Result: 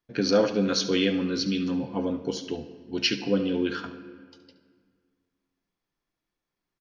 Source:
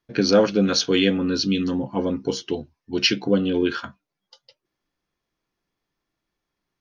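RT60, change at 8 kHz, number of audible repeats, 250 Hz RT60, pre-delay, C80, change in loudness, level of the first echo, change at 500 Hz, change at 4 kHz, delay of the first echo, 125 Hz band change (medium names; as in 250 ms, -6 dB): 1.8 s, no reading, 1, 2.2 s, 4 ms, 12.5 dB, -5.0 dB, -14.0 dB, -4.5 dB, -5.0 dB, 71 ms, -5.5 dB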